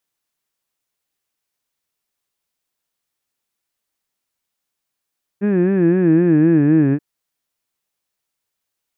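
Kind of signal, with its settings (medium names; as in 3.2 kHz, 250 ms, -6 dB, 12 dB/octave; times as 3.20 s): formant vowel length 1.58 s, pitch 196 Hz, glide -5.5 st, vibrato 3.9 Hz, vibrato depth 1.25 st, F1 320 Hz, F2 1.7 kHz, F3 2.5 kHz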